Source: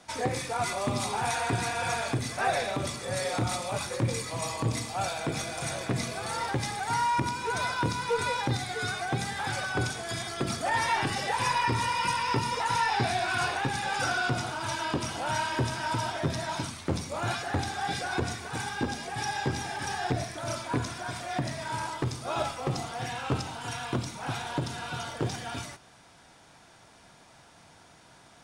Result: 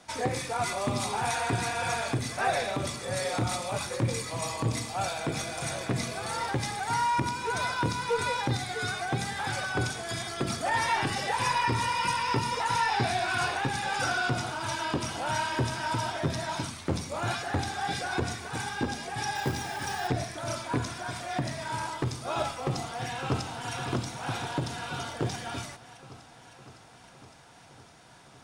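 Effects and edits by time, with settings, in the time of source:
19.35–20.08 short-mantissa float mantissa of 2-bit
22.61–23.73 echo throw 0.56 s, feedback 75%, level -10 dB

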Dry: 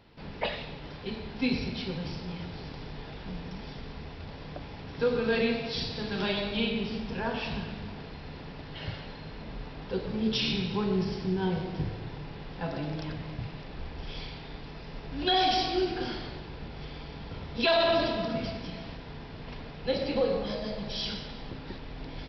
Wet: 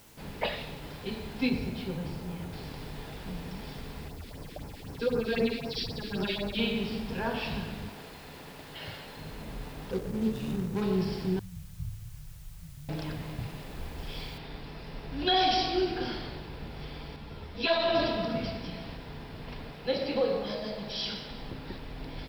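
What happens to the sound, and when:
1.49–2.53 LPF 1800 Hz 6 dB/oct
4.08–6.59 phaser stages 4, 3.9 Hz, lowest notch 110–3600 Hz
7.89–9.17 low shelf 220 Hz -10.5 dB
9.91–10.82 median filter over 41 samples
11.39–12.89 inverse Chebyshev band-stop 560–2800 Hz, stop band 80 dB
14.38 noise floor step -58 dB -69 dB
17.16–17.95 ensemble effect
19.73–21.3 low shelf 120 Hz -9.5 dB

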